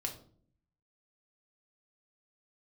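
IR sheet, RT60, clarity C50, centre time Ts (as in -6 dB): 0.55 s, 10.5 dB, 15 ms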